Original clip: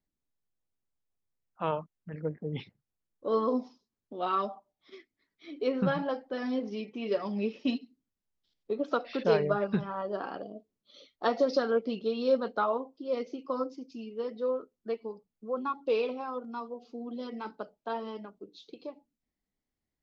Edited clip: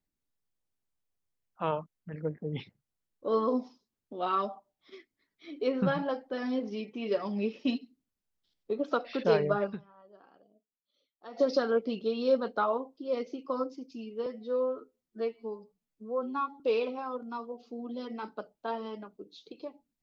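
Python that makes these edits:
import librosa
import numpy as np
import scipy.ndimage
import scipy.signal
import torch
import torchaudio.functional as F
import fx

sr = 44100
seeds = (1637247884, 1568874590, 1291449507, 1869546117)

y = fx.edit(x, sr, fx.fade_down_up(start_s=9.69, length_s=1.72, db=-22.5, fade_s=0.46, curve='exp'),
    fx.stretch_span(start_s=14.26, length_s=1.56, factor=1.5), tone=tone)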